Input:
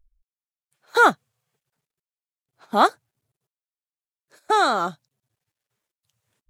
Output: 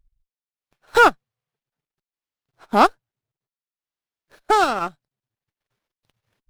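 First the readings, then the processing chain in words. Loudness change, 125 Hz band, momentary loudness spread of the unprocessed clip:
+2.0 dB, can't be measured, 8 LU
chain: transient designer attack +3 dB, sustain −11 dB
windowed peak hold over 5 samples
level +1 dB

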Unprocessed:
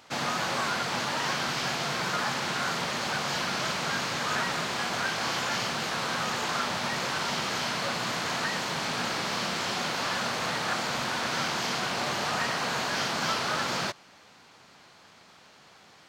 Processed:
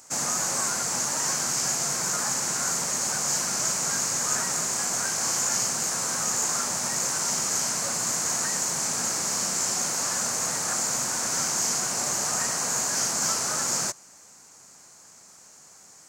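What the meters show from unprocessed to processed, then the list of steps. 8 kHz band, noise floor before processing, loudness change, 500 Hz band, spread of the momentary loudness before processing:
+16.0 dB, −55 dBFS, +4.5 dB, −2.5 dB, 1 LU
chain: high shelf with overshoot 5,000 Hz +13.5 dB, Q 3
level −2.5 dB

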